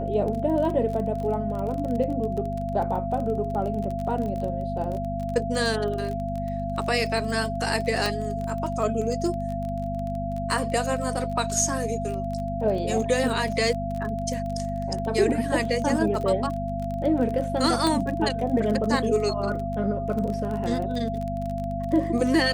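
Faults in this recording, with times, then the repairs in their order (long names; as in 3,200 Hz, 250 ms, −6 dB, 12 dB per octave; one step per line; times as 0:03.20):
surface crackle 25 per second −30 dBFS
mains hum 50 Hz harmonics 5 −31 dBFS
whistle 680 Hz −30 dBFS
0:08.06: click
0:17.87: click −11 dBFS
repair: click removal
hum removal 50 Hz, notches 5
notch filter 680 Hz, Q 30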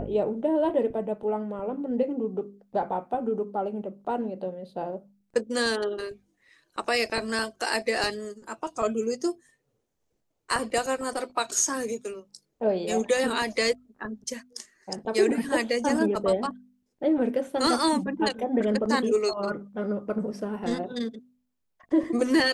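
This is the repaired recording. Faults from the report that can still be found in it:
0:08.06: click
0:17.87: click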